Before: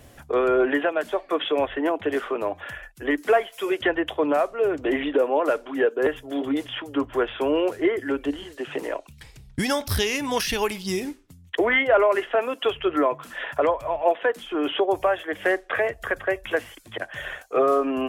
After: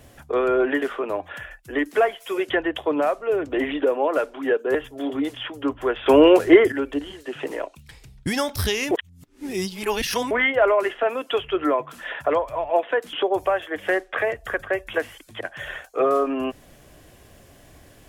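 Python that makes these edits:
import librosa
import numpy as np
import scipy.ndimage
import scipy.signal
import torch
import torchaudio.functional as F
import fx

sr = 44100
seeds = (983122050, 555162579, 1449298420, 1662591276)

y = fx.edit(x, sr, fx.cut(start_s=0.82, length_s=1.32),
    fx.clip_gain(start_s=7.38, length_s=0.66, db=9.5),
    fx.reverse_span(start_s=10.23, length_s=1.4),
    fx.cut(start_s=14.45, length_s=0.25), tone=tone)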